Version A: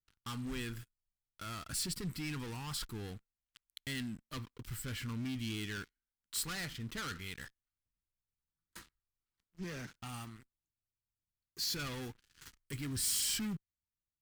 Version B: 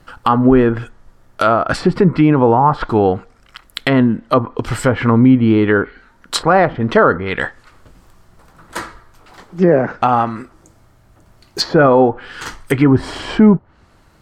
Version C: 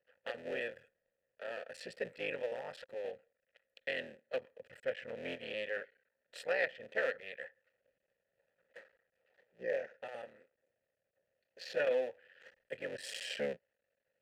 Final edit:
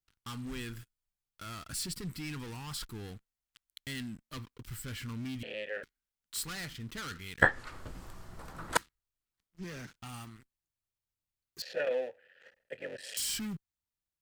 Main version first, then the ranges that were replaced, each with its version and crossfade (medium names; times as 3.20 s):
A
5.43–5.83 s: from C
7.42–8.77 s: from B
11.62–13.17 s: from C